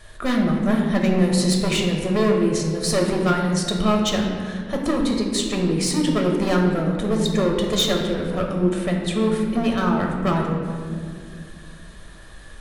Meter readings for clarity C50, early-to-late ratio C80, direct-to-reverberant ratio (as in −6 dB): 3.0 dB, 4.5 dB, 0.0 dB